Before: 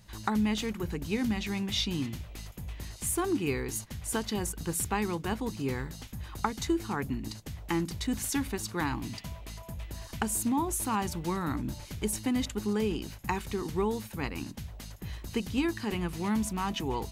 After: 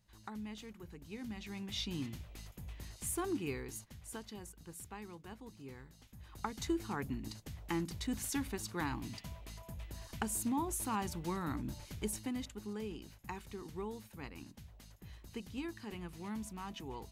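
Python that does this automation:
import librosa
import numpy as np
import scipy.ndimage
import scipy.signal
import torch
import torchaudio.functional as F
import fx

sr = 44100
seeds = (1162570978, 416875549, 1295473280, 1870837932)

y = fx.gain(x, sr, db=fx.line((1.03, -17.0), (1.98, -7.5), (3.32, -7.5), (4.56, -18.0), (5.95, -18.0), (6.64, -6.5), (12.04, -6.5), (12.52, -13.0)))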